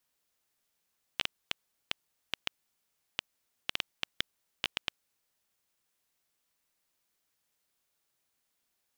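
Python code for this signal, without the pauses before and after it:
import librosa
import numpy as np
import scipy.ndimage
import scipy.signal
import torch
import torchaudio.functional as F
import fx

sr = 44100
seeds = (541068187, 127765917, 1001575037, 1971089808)

y = fx.geiger_clicks(sr, seeds[0], length_s=3.89, per_s=4.5, level_db=-11.0)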